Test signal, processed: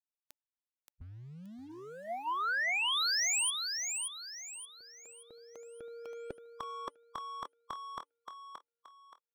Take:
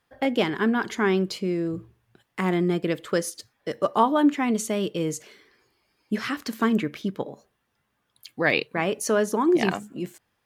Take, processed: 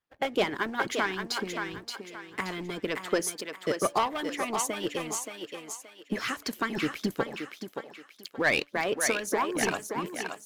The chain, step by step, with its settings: de-hum 288.5 Hz, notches 3; sample leveller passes 2; harmonic-percussive split harmonic -16 dB; on a send: thinning echo 0.575 s, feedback 36%, high-pass 370 Hz, level -5 dB; on the sum: gain -6 dB

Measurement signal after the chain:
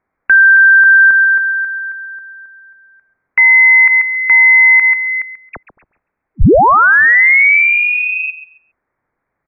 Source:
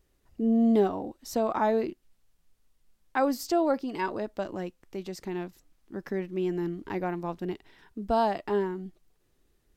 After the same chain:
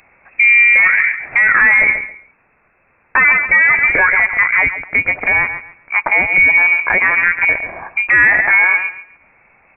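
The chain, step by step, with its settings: HPF 780 Hz 6 dB/oct; soft clip -25 dBFS; on a send: feedback echo 0.137 s, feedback 22%, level -13 dB; on the sum: inverted band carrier 2600 Hz; maximiser +32 dB; gain -2 dB

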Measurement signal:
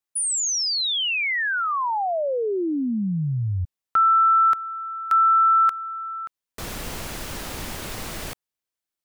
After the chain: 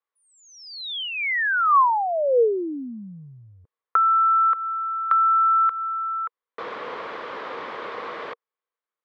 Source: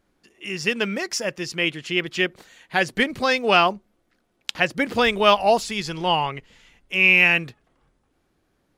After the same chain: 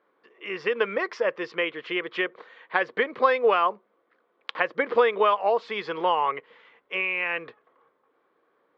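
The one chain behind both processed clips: compressor 10:1, threshold -21 dBFS; speaker cabinet 450–3000 Hz, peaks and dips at 470 Hz +10 dB, 730 Hz -3 dB, 1100 Hz +9 dB, 2700 Hz -7 dB; gain +2 dB

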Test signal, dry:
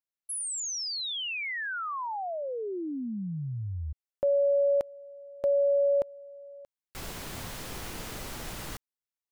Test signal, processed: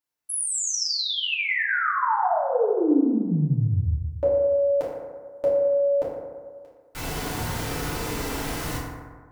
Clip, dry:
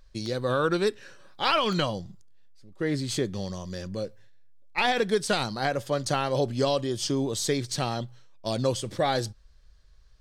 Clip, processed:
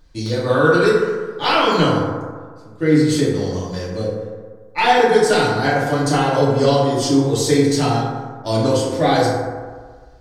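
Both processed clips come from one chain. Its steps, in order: FDN reverb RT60 1.6 s, low-frequency decay 0.9×, high-frequency decay 0.35×, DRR -8 dB; gain +1.5 dB

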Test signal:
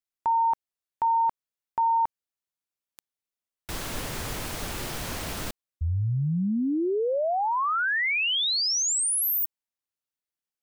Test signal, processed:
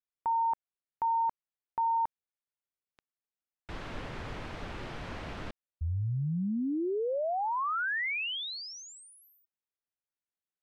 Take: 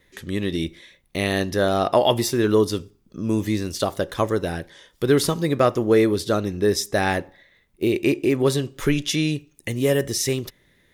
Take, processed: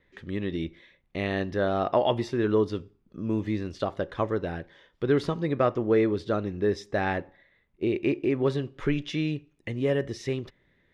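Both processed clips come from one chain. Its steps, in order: LPF 2700 Hz 12 dB/oct; gain -5.5 dB

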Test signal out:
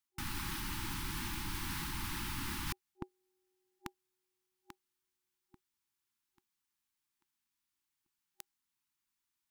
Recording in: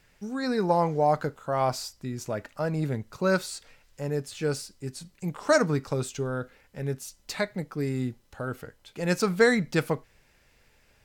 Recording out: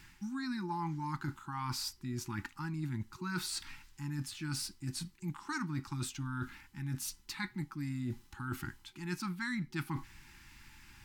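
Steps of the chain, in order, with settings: FFT band-reject 370–800 Hz; dynamic EQ 7100 Hz, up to -5 dB, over -52 dBFS, Q 2.1; reverse; compressor 6:1, threshold -43 dBFS; reverse; gain +6.5 dB

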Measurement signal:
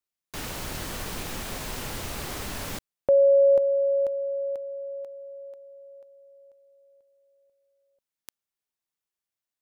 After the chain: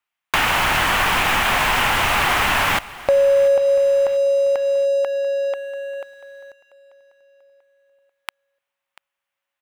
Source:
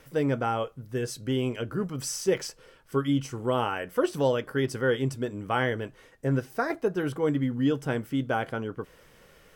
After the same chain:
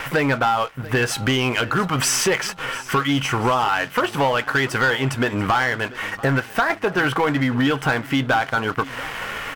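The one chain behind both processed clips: band shelf 1500 Hz +14 dB 2.5 oct; compressor 5:1, threshold -33 dBFS; sample leveller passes 3; feedback echo 0.689 s, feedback 43%, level -19 dB; gain +6 dB

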